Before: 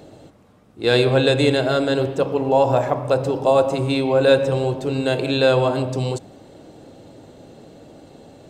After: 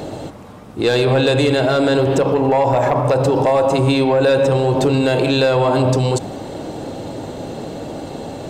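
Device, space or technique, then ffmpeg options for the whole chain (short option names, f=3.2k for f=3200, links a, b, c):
mastering chain: -af "equalizer=f=920:t=o:w=0.62:g=4,acompressor=threshold=-20dB:ratio=2.5,asoftclip=type=tanh:threshold=-13dB,asoftclip=type=hard:threshold=-15.5dB,alimiter=level_in=22.5dB:limit=-1dB:release=50:level=0:latency=1,volume=-7.5dB"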